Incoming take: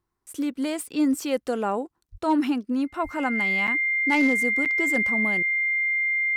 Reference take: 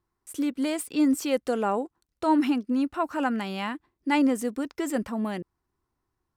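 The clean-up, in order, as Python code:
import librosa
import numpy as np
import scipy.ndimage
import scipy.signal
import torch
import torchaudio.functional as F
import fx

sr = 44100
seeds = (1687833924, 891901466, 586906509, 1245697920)

y = fx.fix_declip(x, sr, threshold_db=-14.0)
y = fx.notch(y, sr, hz=2100.0, q=30.0)
y = fx.highpass(y, sr, hz=140.0, slope=24, at=(2.11, 2.23), fade=0.02)
y = fx.highpass(y, sr, hz=140.0, slope=24, at=(3.03, 3.15), fade=0.02)
y = fx.fix_interpolate(y, sr, at_s=(3.67, 4.65), length_ms=7.4)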